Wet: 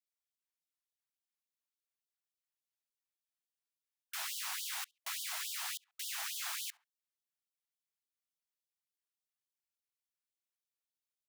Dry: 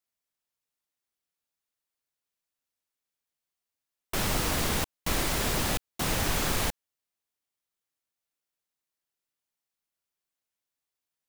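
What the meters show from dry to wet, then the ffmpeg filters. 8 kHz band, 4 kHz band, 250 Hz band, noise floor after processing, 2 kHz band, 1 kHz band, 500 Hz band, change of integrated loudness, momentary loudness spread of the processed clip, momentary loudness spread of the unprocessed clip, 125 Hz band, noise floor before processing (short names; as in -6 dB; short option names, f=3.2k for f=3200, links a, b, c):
-8.0 dB, -8.0 dB, under -40 dB, under -85 dBFS, -10.5 dB, -15.0 dB, -30.0 dB, -10.0 dB, 4 LU, 4 LU, under -40 dB, under -85 dBFS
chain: -filter_complex "[0:a]asubboost=boost=10.5:cutoff=180,asplit=2[a][b];[b]adelay=69,lowpass=f=2.5k:p=1,volume=-23dB,asplit=2[c][d];[d]adelay=69,lowpass=f=2.5k:p=1,volume=0.37[e];[a][c][e]amix=inputs=3:normalize=0,afftfilt=real='re*gte(b*sr/1024,620*pow(3000/620,0.5+0.5*sin(2*PI*3.5*pts/sr)))':imag='im*gte(b*sr/1024,620*pow(3000/620,0.5+0.5*sin(2*PI*3.5*pts/sr)))':win_size=1024:overlap=0.75,volume=-8dB"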